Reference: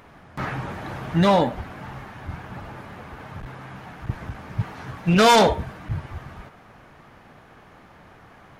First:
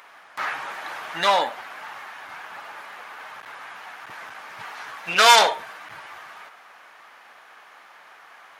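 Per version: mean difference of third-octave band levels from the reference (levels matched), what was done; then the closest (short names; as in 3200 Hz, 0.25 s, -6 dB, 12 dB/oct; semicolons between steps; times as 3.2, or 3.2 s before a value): 9.5 dB: HPF 1000 Hz 12 dB/oct; gain +5.5 dB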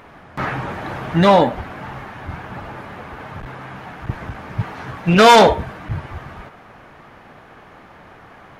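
1.5 dB: tone controls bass -4 dB, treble -5 dB; gain +6.5 dB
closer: second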